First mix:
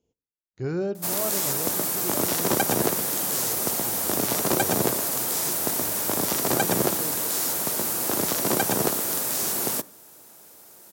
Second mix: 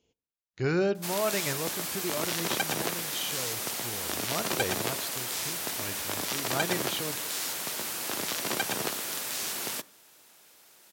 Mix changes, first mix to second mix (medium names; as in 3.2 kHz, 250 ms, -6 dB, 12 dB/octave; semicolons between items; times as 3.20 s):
background -11.5 dB; master: add peaking EQ 2.8 kHz +13 dB 2.4 oct